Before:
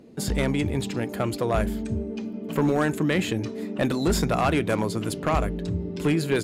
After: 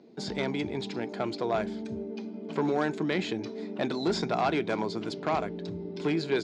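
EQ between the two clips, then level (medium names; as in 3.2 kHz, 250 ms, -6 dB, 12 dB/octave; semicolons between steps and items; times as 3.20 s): cabinet simulation 260–5200 Hz, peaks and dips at 270 Hz -5 dB, 530 Hz -8 dB, 1.2 kHz -7 dB, 1.8 kHz -6 dB, 2.8 kHz -8 dB; 0.0 dB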